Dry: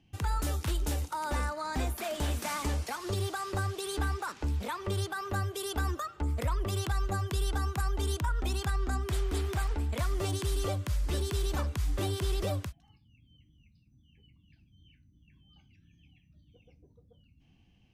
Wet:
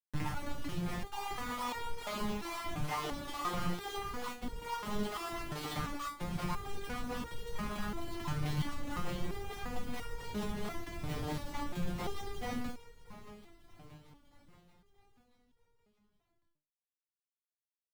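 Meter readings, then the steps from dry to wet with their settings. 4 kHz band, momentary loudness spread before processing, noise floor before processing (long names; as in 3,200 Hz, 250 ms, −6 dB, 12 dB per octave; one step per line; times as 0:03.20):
−5.0 dB, 2 LU, −65 dBFS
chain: lower of the sound and its delayed copy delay 0.95 ms
mains-hum notches 60/120/180/240/300/360 Hz
in parallel at 0 dB: downward compressor, threshold −41 dBFS, peak gain reduction 13.5 dB
on the sum: brickwall limiter −26.5 dBFS, peak gain reduction 6.5 dB
Gaussian smoothing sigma 2.5 samples
soft clipping −34.5 dBFS, distortion −13 dB
random phases in short frames
centre clipping without the shift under −41.5 dBFS
on a send: repeating echo 629 ms, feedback 58%, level −15 dB
on the sum: step-sequenced resonator 2.9 Hz 150–470 Hz
level +16 dB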